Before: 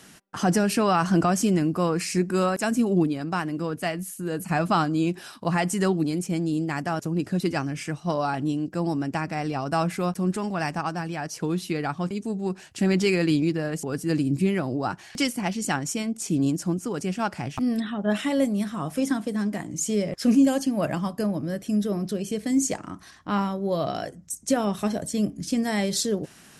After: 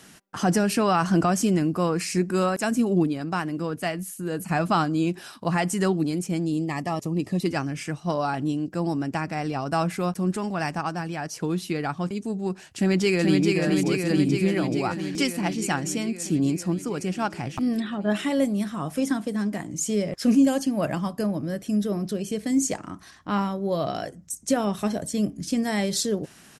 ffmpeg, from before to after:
ffmpeg -i in.wav -filter_complex "[0:a]asettb=1/sr,asplit=3[link_01][link_02][link_03];[link_01]atrim=end=6.454[link_04];[link_02]atrim=start=6.45:end=7.46,asetpts=PTS-STARTPTS,afade=type=in:duration=0.004:curve=qsin,afade=type=out:start_time=1.006:duration=0.004:curve=qsin,asuperstop=centerf=1500:order=8:qfactor=4.1[link_05];[link_03]atrim=start=7.456[link_06];[link_04][link_05]acrossfade=duration=0.004:curve1=hsin:curve2=qsin[link_07];[link_07][link_06]acrossfade=duration=0.004:curve1=qsin:curve2=hsin,asplit=2[link_08][link_09];[link_09]afade=type=in:start_time=12.66:duration=0.01,afade=type=out:start_time=13.51:duration=0.01,aecho=0:1:430|860|1290|1720|2150|2580|3010|3440|3870|4300|4730|5160:0.707946|0.530959|0.39822|0.298665|0.223998|0.167999|0.125999|0.0944994|0.0708745|0.0531559|0.0398669|0.0299002[link_10];[link_08][link_10]amix=inputs=2:normalize=0" out.wav

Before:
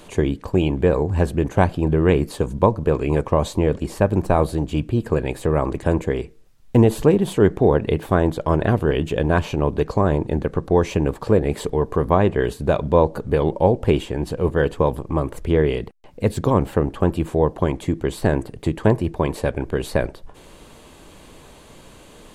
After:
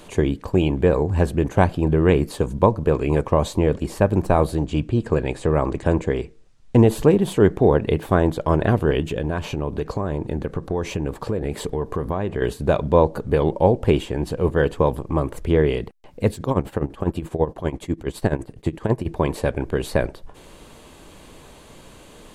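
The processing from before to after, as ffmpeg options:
ffmpeg -i in.wav -filter_complex "[0:a]asettb=1/sr,asplit=3[link_01][link_02][link_03];[link_01]atrim=end=4.584[link_04];[link_02]atrim=start=4.58:end=6.84,asetpts=PTS-STARTPTS,afade=type=in:duration=0.004:curve=qsin,afade=type=out:start_time=2.256:duration=0.004:curve=qsin,lowpass=frequency=8900:width=0.5412,lowpass=frequency=8900:width=1.3066[link_05];[link_03]atrim=start=6.836[link_06];[link_04][link_05]acrossfade=duration=0.004:curve1=hsin:curve2=qsin[link_07];[link_07][link_06]acrossfade=duration=0.004:curve1=qsin:curve2=hsin,asettb=1/sr,asplit=3[link_08][link_09][link_10];[link_08]atrim=end=9.004[link_11];[link_09]atrim=start=9:end=12.42,asetpts=PTS-STARTPTS,afade=type=in:duration=0.004:curve=qsin,afade=type=out:start_time=3.416:duration=0.004:curve=qsin,acompressor=threshold=-20dB:ratio=4:attack=3.2:release=140:knee=1:detection=peak[link_12];[link_10]atrim=start=12.416[link_13];[link_11][link_12]acrossfade=duration=0.004:curve1=hsin:curve2=qsin[link_14];[link_14][link_13]acrossfade=duration=0.004:curve1=qsin:curve2=hsin,asplit=3[link_15][link_16][link_17];[link_15]afade=type=out:start_time=16.3:duration=0.02[link_18];[link_16]tremolo=f=12:d=0.82,afade=type=in:start_time=16.3:duration=0.02,afade=type=out:start_time=19.05:duration=0.02[link_19];[link_17]afade=type=in:start_time=19.05:duration=0.02[link_20];[link_18][link_19][link_20]amix=inputs=3:normalize=0" out.wav

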